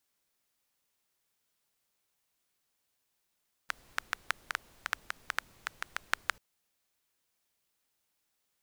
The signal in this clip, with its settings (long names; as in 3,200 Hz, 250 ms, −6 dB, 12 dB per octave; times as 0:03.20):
rain-like ticks over hiss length 2.69 s, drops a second 5.9, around 1,500 Hz, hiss −20.5 dB